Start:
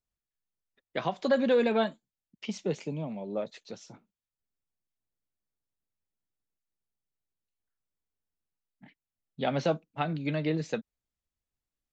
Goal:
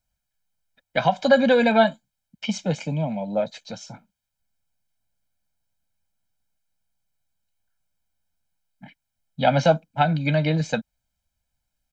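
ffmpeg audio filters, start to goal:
-af "aecho=1:1:1.3:0.99,volume=2.24"

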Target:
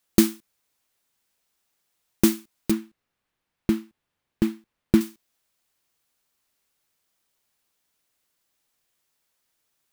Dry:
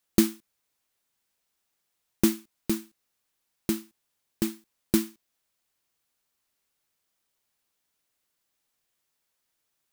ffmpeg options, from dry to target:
-filter_complex "[0:a]asettb=1/sr,asplit=3[s0][s1][s2];[s0]atrim=end=2.714[s3];[s1]atrim=start=2.71:end=5.01,asetpts=PTS-STARTPTS,afade=t=in:d=0.004:c=qsin,afade=t=out:st=2.296:d=0.004:c=qsin,bass=f=250:g=5,treble=f=4000:g=-13[s4];[s2]atrim=start=5.006[s5];[s3][s4]acrossfade=d=0.004:c1=hsin:c2=qsin[s6];[s6][s5]acrossfade=d=0.004:c1=qsin:c2=hsin,volume=1.5"

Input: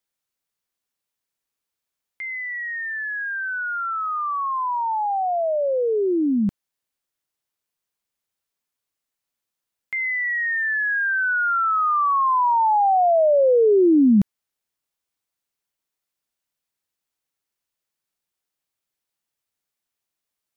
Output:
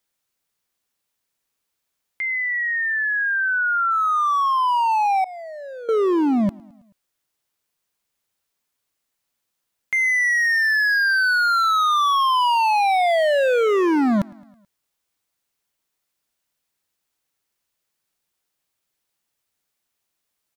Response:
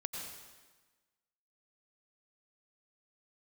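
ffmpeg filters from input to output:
-filter_complex "[0:a]asoftclip=type=hard:threshold=0.0708,aecho=1:1:108|216|324|432:0.0631|0.0372|0.022|0.013,asettb=1/sr,asplit=3[s0][s1][s2];[s0]atrim=end=5.244[s3];[s1]atrim=start=5.24:end=5.89,asetpts=PTS-STARTPTS,afade=t=in:d=0.004:c=qsin,afade=t=out:st=0.646:d=0.004:c=qsin,agate=range=0.0224:threshold=0.178:ratio=3:detection=peak[s4];[s2]atrim=start=5.886[s5];[s3][s4]acrossfade=d=0.004:c1=hsin:c2=qsin[s6];[s6][s5]acrossfade=d=0.004:c1=qsin:c2=hsin,volume=2"

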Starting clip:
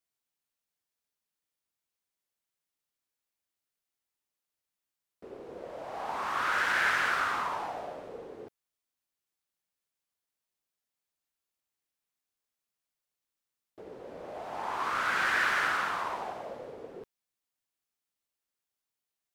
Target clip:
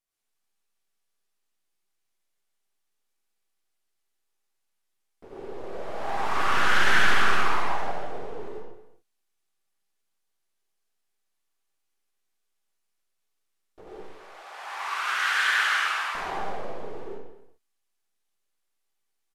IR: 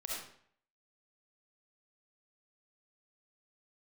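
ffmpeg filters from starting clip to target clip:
-filter_complex "[0:a]aeval=exprs='if(lt(val(0),0),0.251*val(0),val(0))':c=same,asettb=1/sr,asplit=3[s0][s1][s2];[s0]atrim=end=13.894[s3];[s1]atrim=start=13.89:end=16.15,asetpts=PTS-STARTPTS,afade=t=in:d=0.004:c=qsin,afade=t=out:st=2.256:d=0.004:c=qsin,highpass=1200[s4];[s2]atrim=start=16.146[s5];[s3][s4]acrossfade=d=0.004:c1=hsin:c2=qsin[s6];[s6][s5]acrossfade=d=0.004:c1=qsin:c2=hsin,asplit=2[s7][s8];[s8]adelay=227.4,volume=0.2,highshelf=f=4000:g=-5.12[s9];[s7][s9]amix=inputs=2:normalize=0[s10];[1:a]atrim=start_sample=2205,afade=t=out:st=0.24:d=0.01,atrim=end_sample=11025,asetrate=26901,aresample=44100[s11];[s10][s11]afir=irnorm=-1:irlink=0,volume=1.68"

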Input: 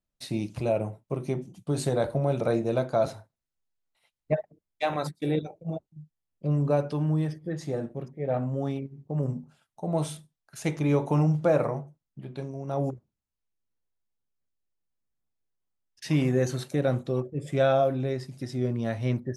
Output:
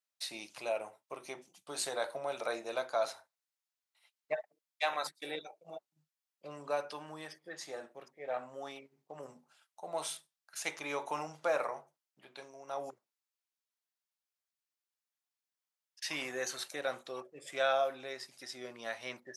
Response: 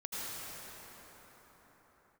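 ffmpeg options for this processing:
-af "highpass=960,equalizer=f=5000:t=o:w=0.77:g=2"

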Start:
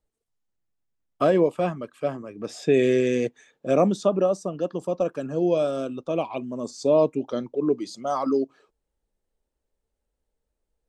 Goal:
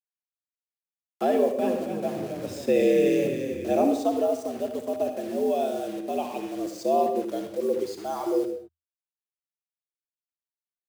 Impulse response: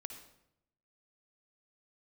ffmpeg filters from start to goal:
-filter_complex "[0:a]equalizer=f=1200:w=3.9:g=-11.5,acrusher=bits=6:mix=0:aa=0.000001,lowshelf=f=130:g=11,asettb=1/sr,asplit=3[s0][s1][s2];[s0]atrim=end=1.354[s3];[s1]atrim=start=1.35:end=3.78,asetpts=PTS-STARTPTS,afade=t=in:d=0.004:c=qsin,afade=t=out:st=2.426:d=0.004:c=qsin,asplit=8[s4][s5][s6][s7][s8][s9][s10][s11];[s5]adelay=269,afreqshift=-47,volume=0.447[s12];[s6]adelay=538,afreqshift=-94,volume=0.24[s13];[s7]adelay=807,afreqshift=-141,volume=0.13[s14];[s8]adelay=1076,afreqshift=-188,volume=0.07[s15];[s9]adelay=1345,afreqshift=-235,volume=0.038[s16];[s10]adelay=1614,afreqshift=-282,volume=0.0204[s17];[s11]adelay=1883,afreqshift=-329,volume=0.0111[s18];[s4][s12][s13][s14][s15][s16][s17][s18]amix=inputs=8:normalize=0,atrim=end_sample=107163[s19];[s2]atrim=start=3.776[s20];[s3][s19]acrossfade=d=0.004:c1=hsin:c2=qsin[s21];[s21][s20]acrossfade=d=0.004:c1=qsin:c2=hsin[s22];[1:a]atrim=start_sample=2205,afade=t=out:st=0.28:d=0.01,atrim=end_sample=12789[s23];[s22][s23]afir=irnorm=-1:irlink=0,afreqshift=81"

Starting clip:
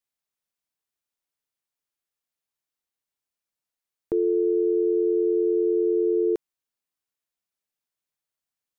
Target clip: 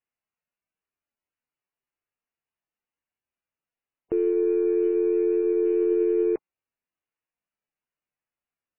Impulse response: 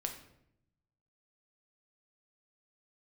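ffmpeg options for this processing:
-af "aeval=exprs='0.168*(cos(1*acos(clip(val(0)/0.168,-1,1)))-cos(1*PI/2))+0.00335*(cos(8*acos(clip(val(0)/0.168,-1,1)))-cos(8*PI/2))':c=same" -ar 12000 -c:a libmp3lame -b:a 8k

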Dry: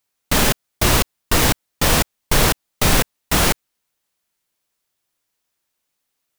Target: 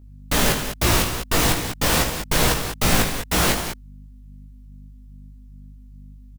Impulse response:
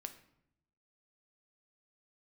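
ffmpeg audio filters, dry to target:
-af "aeval=exprs='val(0)+0.01*(sin(2*PI*50*n/s)+sin(2*PI*2*50*n/s)/2+sin(2*PI*3*50*n/s)/3+sin(2*PI*4*50*n/s)/4+sin(2*PI*5*50*n/s)/5)':c=same,aecho=1:1:72.89|195.3:0.316|0.355,flanger=delay=16.5:depth=3.9:speed=2.4"

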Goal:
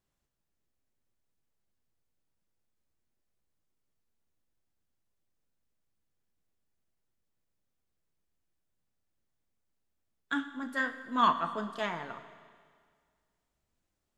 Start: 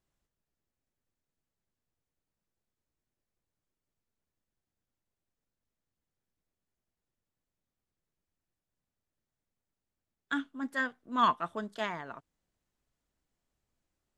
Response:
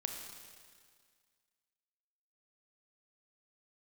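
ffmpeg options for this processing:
-filter_complex "[0:a]flanger=delay=9.6:depth=8.9:regen=-61:speed=0.79:shape=triangular,asplit=2[s0][s1];[1:a]atrim=start_sample=2205[s2];[s1][s2]afir=irnorm=-1:irlink=0,volume=0.841[s3];[s0][s3]amix=inputs=2:normalize=0"

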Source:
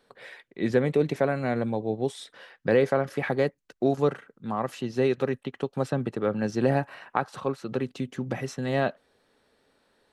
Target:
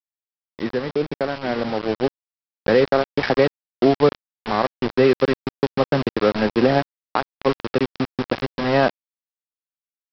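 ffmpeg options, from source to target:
-af "alimiter=limit=0.211:level=0:latency=1:release=307,highpass=150,lowpass=2800,aecho=1:1:829|1658|2487|3316|4145:0.141|0.0777|0.0427|0.0235|0.0129,aresample=11025,aeval=exprs='val(0)*gte(abs(val(0)),0.0335)':c=same,aresample=44100,dynaudnorm=f=420:g=9:m=2.51,volume=1.19"

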